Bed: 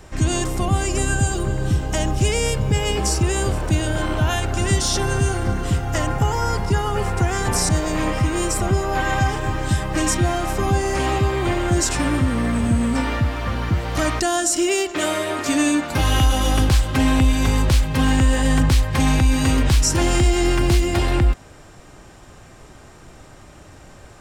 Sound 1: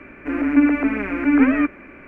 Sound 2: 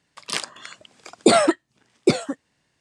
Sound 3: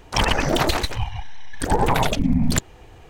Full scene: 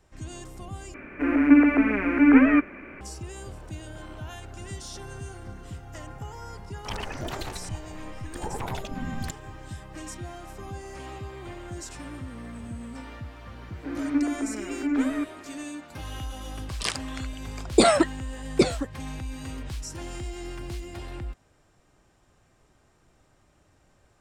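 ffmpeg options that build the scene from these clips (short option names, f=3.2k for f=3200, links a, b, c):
-filter_complex "[1:a]asplit=2[a][b];[0:a]volume=-19dB[c];[b]lowpass=f=1.3k:p=1[d];[c]asplit=2[e][f];[e]atrim=end=0.944[g];[a]atrim=end=2.07,asetpts=PTS-STARTPTS,volume=-0.5dB[h];[f]atrim=start=3.006[i];[3:a]atrim=end=3.09,asetpts=PTS-STARTPTS,volume=-15dB,afade=t=in:d=0.004:c=hsin,afade=t=out:st=3.086:d=0.004:c=hsin,adelay=6720[j];[d]atrim=end=2.07,asetpts=PTS-STARTPTS,volume=-9.5dB,afade=t=in:d=0.004:c=hsin,afade=t=out:st=2.066:d=0.004:c=hsin,adelay=13580[k];[2:a]atrim=end=2.8,asetpts=PTS-STARTPTS,volume=-2.5dB,afade=t=in:d=0.004:c=hsin,afade=t=out:st=2.796:d=0.004:c=hsin,adelay=728532S[l];[g][h]acrossfade=d=0.004:c1=hsin:c2=hsin[m];[m][i]acrossfade=d=0.004:c1=hsin:c2=hsin[n];[n][j][k][l]amix=inputs=4:normalize=0"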